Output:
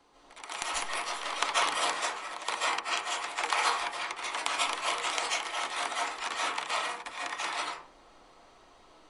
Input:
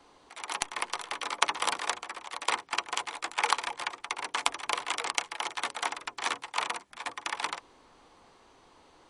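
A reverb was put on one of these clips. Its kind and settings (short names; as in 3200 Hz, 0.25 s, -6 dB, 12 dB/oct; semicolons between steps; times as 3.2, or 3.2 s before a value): digital reverb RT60 0.45 s, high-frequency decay 0.55×, pre-delay 0.11 s, DRR -6.5 dB; gain -5.5 dB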